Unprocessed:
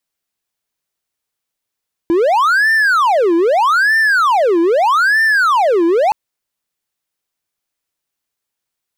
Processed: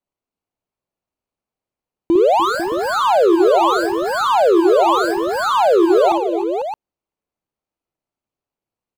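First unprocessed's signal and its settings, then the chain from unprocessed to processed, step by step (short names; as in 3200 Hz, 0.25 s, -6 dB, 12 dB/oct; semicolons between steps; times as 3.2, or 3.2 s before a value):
siren wail 332–1790 Hz 0.8/s triangle -7.5 dBFS 4.02 s
median filter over 25 samples; on a send: tapped delay 55/296/314/496/619 ms -5.5/-13/-15.5/-9.5/-9.5 dB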